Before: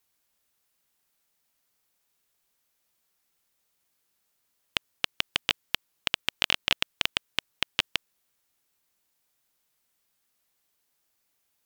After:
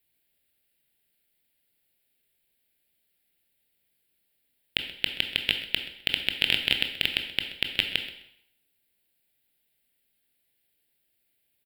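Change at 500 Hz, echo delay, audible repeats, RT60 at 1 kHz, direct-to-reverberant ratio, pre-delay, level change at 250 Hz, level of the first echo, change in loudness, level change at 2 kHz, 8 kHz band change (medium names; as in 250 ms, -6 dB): +0.5 dB, 129 ms, 1, 0.80 s, 5.0 dB, 17 ms, +3.0 dB, -16.0 dB, +2.0 dB, +2.0 dB, -7.5 dB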